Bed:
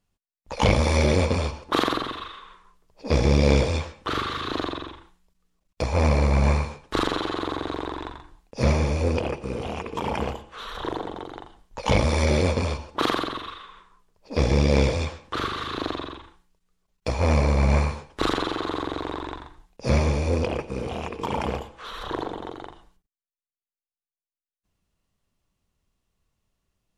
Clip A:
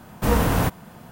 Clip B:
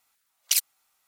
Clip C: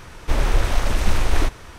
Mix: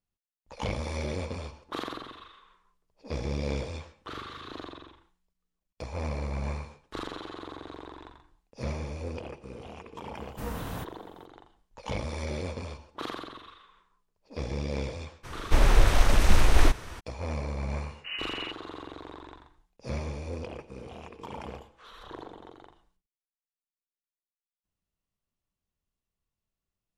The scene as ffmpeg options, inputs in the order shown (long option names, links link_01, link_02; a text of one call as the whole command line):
ffmpeg -i bed.wav -i cue0.wav -i cue1.wav -i cue2.wav -filter_complex "[1:a]asplit=2[link_01][link_02];[0:a]volume=-13dB[link_03];[link_02]lowpass=frequency=2600:width_type=q:width=0.5098,lowpass=frequency=2600:width_type=q:width=0.6013,lowpass=frequency=2600:width_type=q:width=0.9,lowpass=frequency=2600:width_type=q:width=2.563,afreqshift=-3000[link_04];[link_01]atrim=end=1.11,asetpts=PTS-STARTPTS,volume=-16dB,afade=type=in:duration=0.004:curve=hsin,afade=type=out:start_time=1.106:duration=0.004:curve=hsin,adelay=10150[link_05];[3:a]atrim=end=1.78,asetpts=PTS-STARTPTS,volume=-1dB,afade=type=in:duration=0.02,afade=type=out:start_time=1.76:duration=0.02,adelay=15230[link_06];[link_04]atrim=end=1.11,asetpts=PTS-STARTPTS,volume=-18dB,afade=type=in:duration=0.004:curve=hsin,afade=type=out:start_time=1.106:duration=0.004:curve=hsin,adelay=17820[link_07];[link_03][link_05][link_06][link_07]amix=inputs=4:normalize=0" out.wav